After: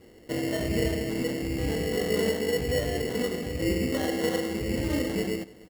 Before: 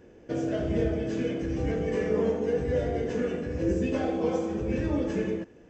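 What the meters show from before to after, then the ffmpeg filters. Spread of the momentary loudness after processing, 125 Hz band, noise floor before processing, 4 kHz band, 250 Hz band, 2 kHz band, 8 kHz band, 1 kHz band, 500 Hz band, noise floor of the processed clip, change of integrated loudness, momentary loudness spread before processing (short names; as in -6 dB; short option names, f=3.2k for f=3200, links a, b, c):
4 LU, 0.0 dB, -53 dBFS, +12.5 dB, 0.0 dB, +6.0 dB, n/a, -0.5 dB, -0.5 dB, -52 dBFS, +0.5 dB, 4 LU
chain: -af "acrusher=samples=18:mix=1:aa=0.000001,aecho=1:1:298:0.0668"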